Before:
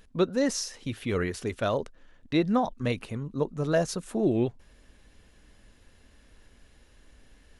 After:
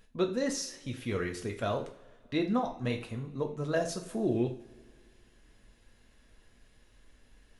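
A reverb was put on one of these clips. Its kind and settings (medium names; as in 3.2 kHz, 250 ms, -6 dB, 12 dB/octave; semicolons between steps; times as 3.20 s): two-slope reverb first 0.4 s, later 2.1 s, from -22 dB, DRR 2.5 dB; trim -6 dB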